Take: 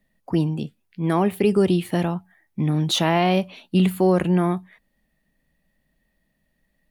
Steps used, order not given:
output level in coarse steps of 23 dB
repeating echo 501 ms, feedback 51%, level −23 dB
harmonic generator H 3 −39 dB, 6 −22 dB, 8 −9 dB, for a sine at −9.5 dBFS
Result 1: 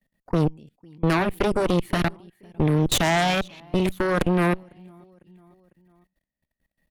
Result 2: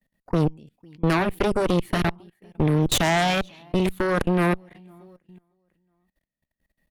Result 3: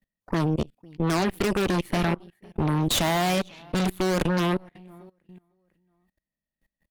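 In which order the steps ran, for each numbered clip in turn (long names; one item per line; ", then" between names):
output level in coarse steps, then repeating echo, then harmonic generator
repeating echo, then output level in coarse steps, then harmonic generator
repeating echo, then harmonic generator, then output level in coarse steps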